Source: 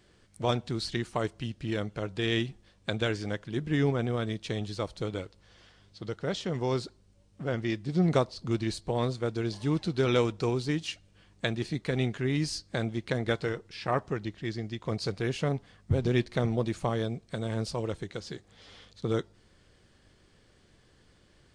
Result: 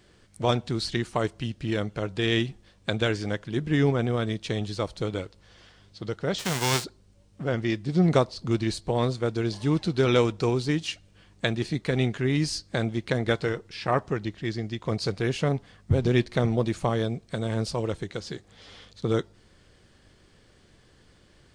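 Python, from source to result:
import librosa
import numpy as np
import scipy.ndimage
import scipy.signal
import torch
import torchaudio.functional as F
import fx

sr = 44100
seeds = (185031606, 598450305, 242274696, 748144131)

y = fx.envelope_flatten(x, sr, power=0.3, at=(6.38, 6.83), fade=0.02)
y = y * librosa.db_to_amplitude(4.0)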